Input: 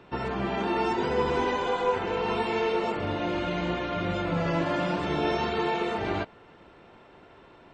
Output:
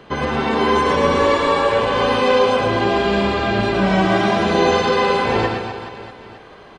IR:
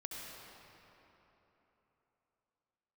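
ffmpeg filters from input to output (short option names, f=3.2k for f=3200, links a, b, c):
-af "asetrate=50274,aresample=44100,aecho=1:1:110|247.5|419.4|634.2|902.8:0.631|0.398|0.251|0.158|0.1,volume=8.5dB"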